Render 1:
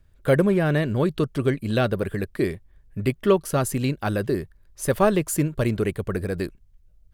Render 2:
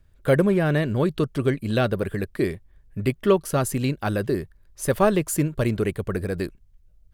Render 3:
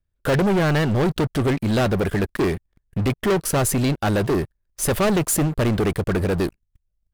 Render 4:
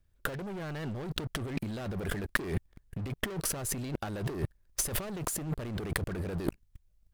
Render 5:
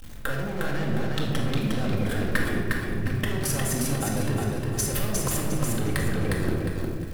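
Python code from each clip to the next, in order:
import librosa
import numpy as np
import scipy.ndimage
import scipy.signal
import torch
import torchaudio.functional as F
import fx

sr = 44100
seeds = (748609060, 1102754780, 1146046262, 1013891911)

y1 = x
y2 = fx.leveller(y1, sr, passes=5)
y2 = y2 * librosa.db_to_amplitude(-8.5)
y3 = fx.over_compress(y2, sr, threshold_db=-31.0, ratio=-1.0)
y3 = y3 * librosa.db_to_amplitude(-4.0)
y4 = y3 + 0.5 * 10.0 ** (-39.5 / 20.0) * np.sign(y3)
y4 = fx.echo_feedback(y4, sr, ms=357, feedback_pct=33, wet_db=-3.0)
y4 = fx.room_shoebox(y4, sr, seeds[0], volume_m3=1100.0, walls='mixed', distance_m=2.1)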